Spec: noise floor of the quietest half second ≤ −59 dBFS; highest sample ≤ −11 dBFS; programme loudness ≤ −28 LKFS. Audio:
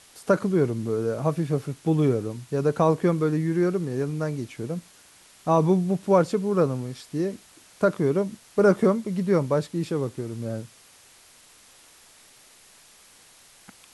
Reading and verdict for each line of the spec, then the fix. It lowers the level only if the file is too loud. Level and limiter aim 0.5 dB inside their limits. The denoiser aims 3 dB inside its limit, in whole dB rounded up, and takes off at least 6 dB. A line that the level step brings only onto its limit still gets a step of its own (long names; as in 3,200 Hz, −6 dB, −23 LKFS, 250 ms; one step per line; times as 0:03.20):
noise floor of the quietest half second −54 dBFS: out of spec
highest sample −7.0 dBFS: out of spec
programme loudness −24.5 LKFS: out of spec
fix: broadband denoise 6 dB, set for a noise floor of −54 dBFS
level −4 dB
brickwall limiter −11.5 dBFS